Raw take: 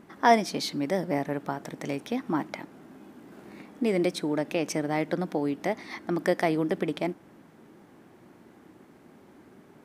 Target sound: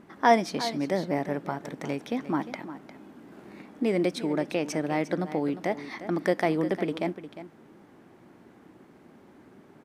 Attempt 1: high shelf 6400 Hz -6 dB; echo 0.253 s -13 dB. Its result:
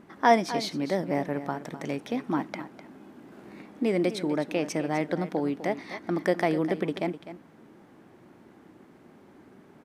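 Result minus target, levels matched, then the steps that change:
echo 0.101 s early
change: echo 0.354 s -13 dB

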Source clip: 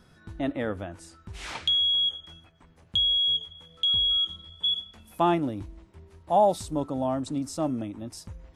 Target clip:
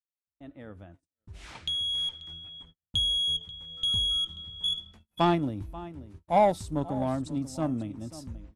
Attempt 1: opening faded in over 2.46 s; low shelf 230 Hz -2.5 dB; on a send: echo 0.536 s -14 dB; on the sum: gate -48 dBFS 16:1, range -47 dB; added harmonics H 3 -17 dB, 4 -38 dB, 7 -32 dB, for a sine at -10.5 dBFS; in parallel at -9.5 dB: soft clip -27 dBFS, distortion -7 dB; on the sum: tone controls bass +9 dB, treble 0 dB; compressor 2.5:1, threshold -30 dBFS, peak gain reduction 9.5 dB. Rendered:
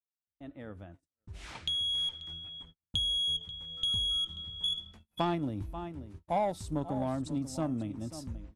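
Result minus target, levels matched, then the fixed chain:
compressor: peak gain reduction +9.5 dB
opening faded in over 2.46 s; low shelf 230 Hz -2.5 dB; on a send: echo 0.536 s -14 dB; on the sum: gate -48 dBFS 16:1, range -47 dB; added harmonics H 3 -17 dB, 4 -38 dB, 7 -32 dB, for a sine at -10.5 dBFS; in parallel at -9.5 dB: soft clip -27 dBFS, distortion -7 dB; on the sum: tone controls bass +9 dB, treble 0 dB

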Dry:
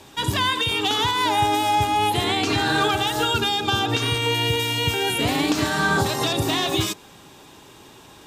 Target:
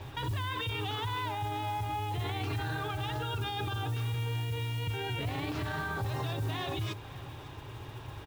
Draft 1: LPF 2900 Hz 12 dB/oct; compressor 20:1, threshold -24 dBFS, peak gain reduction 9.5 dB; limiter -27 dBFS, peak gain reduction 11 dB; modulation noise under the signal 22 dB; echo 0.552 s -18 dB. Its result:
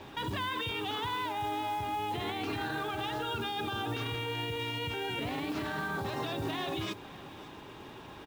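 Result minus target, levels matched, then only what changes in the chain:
125 Hz band -8.5 dB
add after compressor: resonant low shelf 150 Hz +8.5 dB, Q 3

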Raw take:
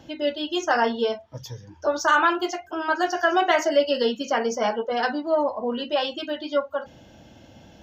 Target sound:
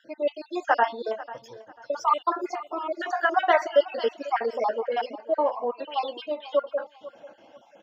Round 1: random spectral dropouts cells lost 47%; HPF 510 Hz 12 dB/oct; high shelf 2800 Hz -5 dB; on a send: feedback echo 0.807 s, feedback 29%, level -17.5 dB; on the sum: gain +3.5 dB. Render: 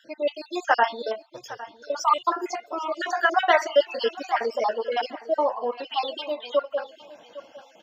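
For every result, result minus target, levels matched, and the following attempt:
echo 0.314 s late; 4000 Hz band +5.0 dB
random spectral dropouts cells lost 47%; HPF 510 Hz 12 dB/oct; high shelf 2800 Hz -5 dB; on a send: feedback echo 0.493 s, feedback 29%, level -17.5 dB; on the sum: gain +3.5 dB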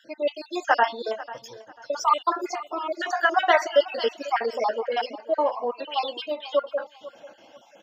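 4000 Hz band +5.0 dB
random spectral dropouts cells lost 47%; HPF 510 Hz 12 dB/oct; high shelf 2800 Hz -16 dB; on a send: feedback echo 0.493 s, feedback 29%, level -17.5 dB; on the sum: gain +3.5 dB

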